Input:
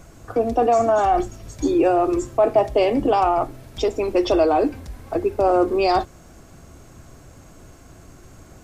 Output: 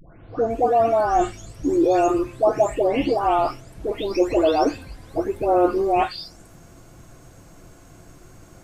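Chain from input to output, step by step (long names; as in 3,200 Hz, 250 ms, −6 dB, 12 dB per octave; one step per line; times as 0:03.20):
every frequency bin delayed by itself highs late, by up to 507 ms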